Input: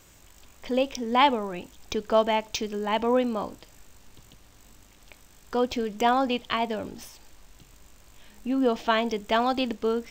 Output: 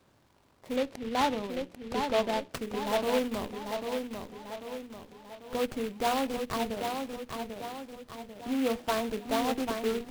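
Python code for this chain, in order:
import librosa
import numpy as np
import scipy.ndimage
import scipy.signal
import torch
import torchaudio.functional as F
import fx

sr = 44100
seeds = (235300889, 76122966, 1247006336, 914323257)

p1 = fx.tracing_dist(x, sr, depth_ms=0.23)
p2 = scipy.signal.sosfilt(scipy.signal.butter(4, 85.0, 'highpass', fs=sr, output='sos'), p1)
p3 = fx.peak_eq(p2, sr, hz=3400.0, db=-12.0, octaves=2.2)
p4 = fx.hum_notches(p3, sr, base_hz=60, count=8)
p5 = fx.schmitt(p4, sr, flips_db=-29.0)
p6 = p4 + (p5 * 10.0 ** (-9.5 / 20.0))
p7 = fx.sample_hold(p6, sr, seeds[0], rate_hz=7100.0, jitter_pct=0)
p8 = fx.air_absorb(p7, sr, metres=130.0, at=(0.76, 2.51))
p9 = fx.echo_feedback(p8, sr, ms=793, feedback_pct=49, wet_db=-5.5)
p10 = fx.noise_mod_delay(p9, sr, seeds[1], noise_hz=2300.0, depth_ms=0.067)
y = p10 * 10.0 ** (-5.0 / 20.0)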